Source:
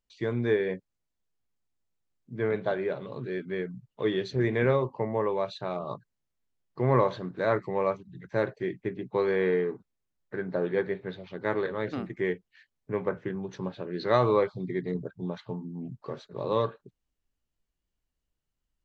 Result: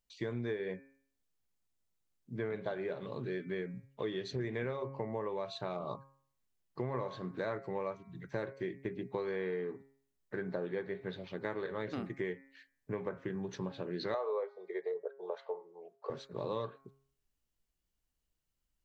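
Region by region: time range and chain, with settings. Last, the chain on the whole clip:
0:14.14–0:16.10: elliptic high-pass filter 430 Hz + tilt shelving filter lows +9 dB, about 1,400 Hz
whole clip: high-shelf EQ 5,100 Hz +5.5 dB; hum removal 136.2 Hz, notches 18; downward compressor 6 to 1, threshold −32 dBFS; level −2 dB

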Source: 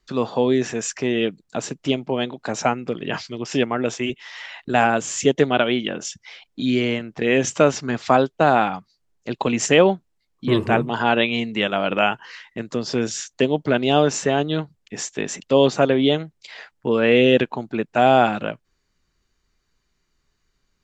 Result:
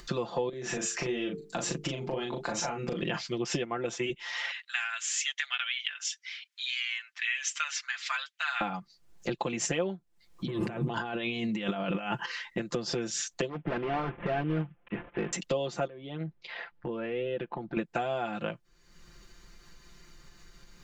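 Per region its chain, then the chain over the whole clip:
0:00.49–0:03.01: mains-hum notches 50/100/150/200/250/300/350/400/450 Hz + downward compressor 10 to 1, threshold −29 dBFS + double-tracking delay 38 ms −4 dB
0:04.51–0:08.61: inverse Chebyshev high-pass filter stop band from 370 Hz, stop band 70 dB + high-shelf EQ 6,100 Hz −8 dB
0:10.47–0:12.26: high-pass filter 43 Hz + compressor whose output falls as the input rises −30 dBFS + parametric band 160 Hz +4.5 dB 1.4 octaves
0:13.49–0:15.33: variable-slope delta modulation 16 kbit/s + hard clipping −21.5 dBFS + high-frequency loss of the air 190 metres
0:15.87–0:17.77: high-frequency loss of the air 310 metres + downward compressor 4 to 1, threshold −34 dBFS
whole clip: downward compressor 12 to 1, threshold −29 dBFS; comb filter 5.8 ms, depth 73%; upward compression, threshold −39 dBFS

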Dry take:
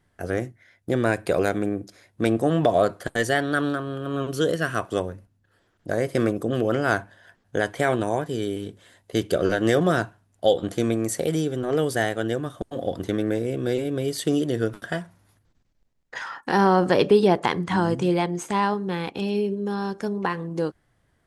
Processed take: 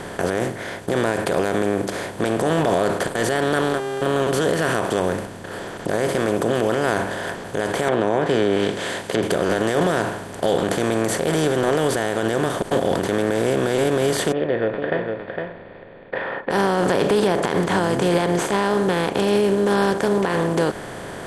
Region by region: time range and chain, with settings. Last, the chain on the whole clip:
0:03.60–0:04.01: noise gate −25 dBFS, range −32 dB + hum with harmonics 400 Hz, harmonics 36, −48 dBFS −8 dB per octave
0:07.88–0:09.23: meter weighting curve D + treble cut that deepens with the level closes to 790 Hz, closed at −21 dBFS
0:14.32–0:16.51: formant resonators in series e + single-tap delay 458 ms −12.5 dB
whole clip: compressor on every frequency bin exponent 0.4; brickwall limiter −9.5 dBFS

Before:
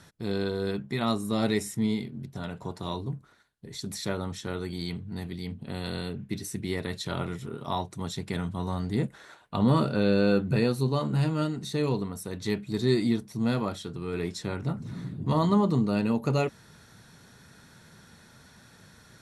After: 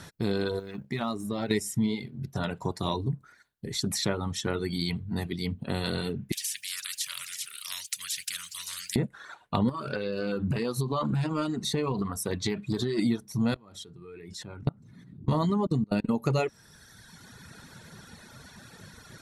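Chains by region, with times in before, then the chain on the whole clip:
0:00.59–0:01.51: mu-law and A-law mismatch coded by A + high-shelf EQ 4,500 Hz −7 dB + downward compressor 2.5 to 1, threshold −35 dBFS
0:06.32–0:08.96: inverse Chebyshev high-pass filter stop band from 860 Hz, stop band 60 dB + every bin compressed towards the loudest bin 4 to 1
0:09.69–0:12.99: parametric band 1,100 Hz +8.5 dB 0.2 octaves + downward compressor 16 to 1, threshold −27 dBFS + highs frequency-modulated by the lows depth 0.14 ms
0:13.54–0:16.11: low-shelf EQ 220 Hz +4 dB + output level in coarse steps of 24 dB
whole clip: reverb reduction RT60 1.4 s; downward compressor 3 to 1, threshold −33 dBFS; level +8 dB

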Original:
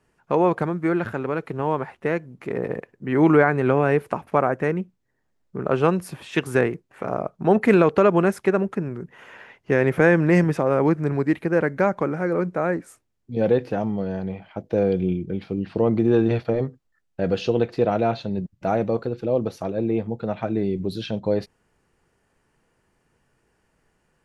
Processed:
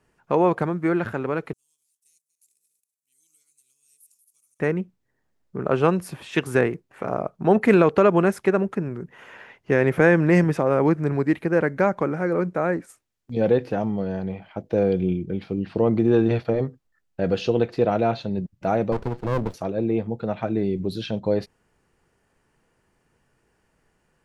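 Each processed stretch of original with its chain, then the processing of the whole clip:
0:01.53–0:04.60: feedback delay that plays each chunk backwards 118 ms, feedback 41%, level −11 dB + inverse Chebyshev high-pass filter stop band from 1,800 Hz, stop band 70 dB + leveller curve on the samples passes 1
0:12.53–0:13.55: noise gate −47 dBFS, range −8 dB + one half of a high-frequency compander encoder only
0:18.92–0:19.54: high-pass filter 60 Hz 24 dB per octave + windowed peak hold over 33 samples
whole clip: no processing

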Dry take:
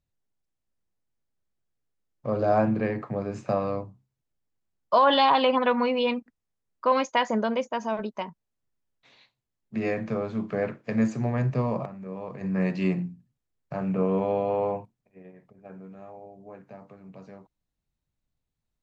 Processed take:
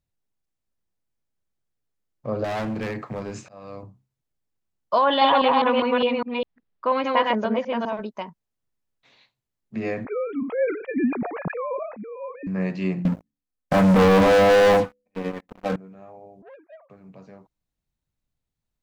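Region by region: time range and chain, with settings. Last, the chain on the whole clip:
0:02.44–0:03.83: high-shelf EQ 2,300 Hz +10.5 dB + volume swells 701 ms + gain into a clipping stage and back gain 25.5 dB
0:05.01–0:07.93: delay that plays each chunk backwards 203 ms, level −1 dB + low-pass filter 4,100 Hz 24 dB per octave
0:10.05–0:12.47: three sine waves on the formant tracks + level that may fall only so fast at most 92 dB per second
0:13.05–0:15.76: comb filter 3.9 ms, depth 77% + hum removal 70.96 Hz, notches 7 + leveller curve on the samples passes 5
0:16.42–0:16.90: three sine waves on the formant tracks + saturating transformer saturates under 770 Hz
whole clip: no processing

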